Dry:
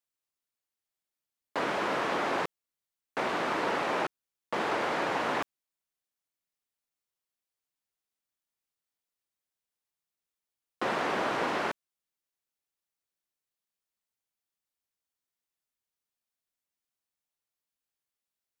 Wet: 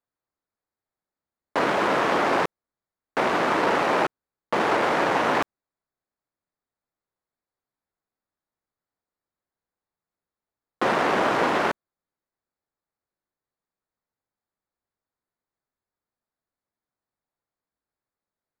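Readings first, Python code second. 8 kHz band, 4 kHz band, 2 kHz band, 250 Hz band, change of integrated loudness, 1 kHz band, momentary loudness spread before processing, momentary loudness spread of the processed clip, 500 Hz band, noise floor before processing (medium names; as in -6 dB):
+6.0 dB, +6.0 dB, +7.5 dB, +8.5 dB, +8.0 dB, +8.0 dB, 7 LU, 7 LU, +8.5 dB, under -85 dBFS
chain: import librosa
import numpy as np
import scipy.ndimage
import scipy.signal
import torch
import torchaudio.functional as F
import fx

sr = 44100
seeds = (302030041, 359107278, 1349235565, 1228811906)

y = fx.wiener(x, sr, points=15)
y = F.gain(torch.from_numpy(y), 8.5).numpy()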